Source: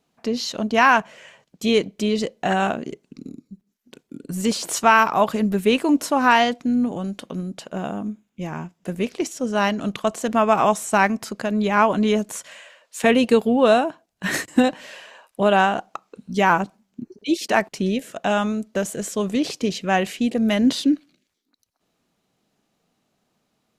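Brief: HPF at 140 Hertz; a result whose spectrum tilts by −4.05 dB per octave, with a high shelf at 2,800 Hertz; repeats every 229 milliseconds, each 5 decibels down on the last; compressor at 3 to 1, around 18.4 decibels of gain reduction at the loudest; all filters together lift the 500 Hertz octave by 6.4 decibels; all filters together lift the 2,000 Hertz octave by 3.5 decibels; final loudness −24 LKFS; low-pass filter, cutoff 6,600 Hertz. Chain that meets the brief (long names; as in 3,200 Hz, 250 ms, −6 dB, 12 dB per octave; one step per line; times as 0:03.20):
high-pass filter 140 Hz
low-pass filter 6,600 Hz
parametric band 500 Hz +8 dB
parametric band 2,000 Hz +6.5 dB
high-shelf EQ 2,800 Hz −6 dB
downward compressor 3 to 1, threshold −31 dBFS
repeating echo 229 ms, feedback 56%, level −5 dB
level +6.5 dB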